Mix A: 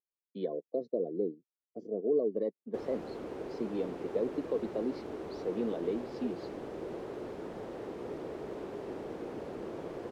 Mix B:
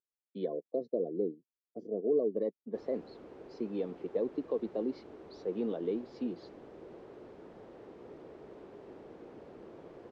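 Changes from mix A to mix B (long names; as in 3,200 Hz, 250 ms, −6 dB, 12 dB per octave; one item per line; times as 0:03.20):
background −9.5 dB
master: add high-frequency loss of the air 60 metres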